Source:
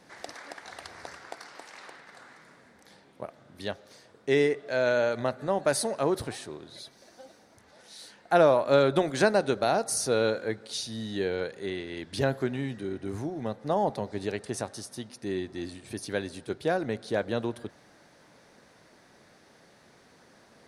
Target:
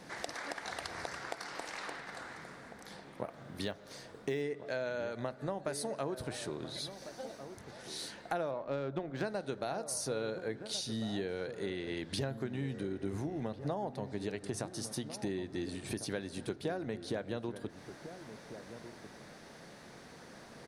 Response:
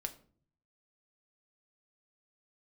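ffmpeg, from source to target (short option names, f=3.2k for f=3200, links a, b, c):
-filter_complex "[0:a]acompressor=threshold=-40dB:ratio=6,asettb=1/sr,asplit=3[a][b][c];[a]atrim=end=3.254[d];[b]atrim=start=3.25:end=4.42,asetpts=PTS-STARTPTS,afade=t=in:d=0.004:c=qsin,afade=t=out:st=1.166:d=0.004:c=qsin,acrusher=bits=9:mode=log:mix=0:aa=0.000001[e];[c]atrim=start=4.416[f];[d][e]acrossfade=d=0.004:c1=hsin:c2=qsin[g];[g][f]acrossfade=d=0.004:c1=qsin:c2=hsin,asettb=1/sr,asplit=3[h][i][j];[h]atrim=end=8.514[k];[i]atrim=start=8.51:end=9.24,asetpts=PTS-STARTPTS,afade=t=in:d=0.004:c=qsin,afade=t=out:st=0.726:d=0.004:c=qsin,adynamicsmooth=sensitivity=8:basefreq=1.7k[l];[j]atrim=start=9.236[m];[k][l]acrossfade=d=0.004:c1=hsin:c2=qsin[n];[n][m]acrossfade=d=0.004:c1=qsin:c2=hsin,asplit=2[o][p];[p]adelay=1399,volume=-11dB,highshelf=f=4k:g=-31.5[q];[o][q]amix=inputs=2:normalize=0,asplit=2[r][s];[1:a]atrim=start_sample=2205,lowshelf=f=340:g=11.5[t];[s][t]afir=irnorm=-1:irlink=0,volume=-13.5dB[u];[r][u]amix=inputs=2:normalize=0,volume=3dB"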